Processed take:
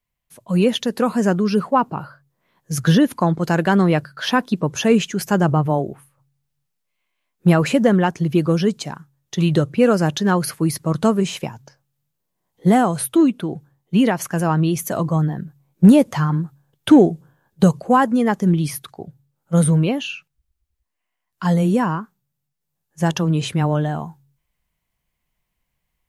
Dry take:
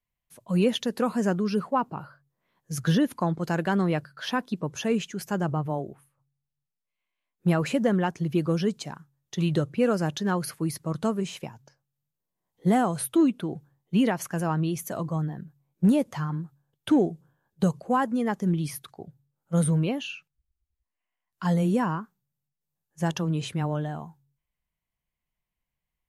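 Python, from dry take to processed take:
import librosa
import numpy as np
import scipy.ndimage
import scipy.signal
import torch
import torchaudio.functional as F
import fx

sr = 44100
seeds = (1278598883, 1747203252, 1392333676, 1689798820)

y = fx.rider(x, sr, range_db=10, speed_s=2.0)
y = F.gain(torch.from_numpy(y), 8.0).numpy()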